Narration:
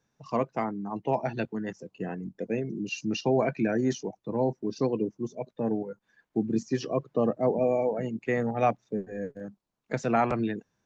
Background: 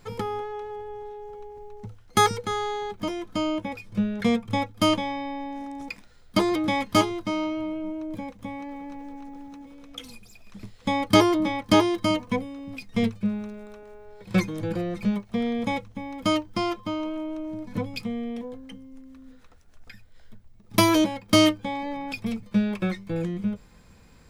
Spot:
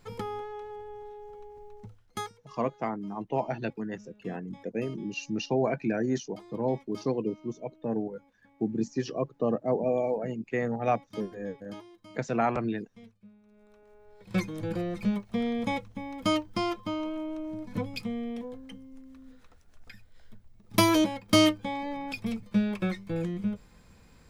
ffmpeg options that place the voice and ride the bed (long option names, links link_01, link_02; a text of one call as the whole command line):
ffmpeg -i stem1.wav -i stem2.wav -filter_complex "[0:a]adelay=2250,volume=-2dB[link_01];[1:a]volume=19.5dB,afade=type=out:start_time=1.75:duration=0.58:silence=0.0749894,afade=type=in:start_time=13.43:duration=1.39:silence=0.0562341[link_02];[link_01][link_02]amix=inputs=2:normalize=0" out.wav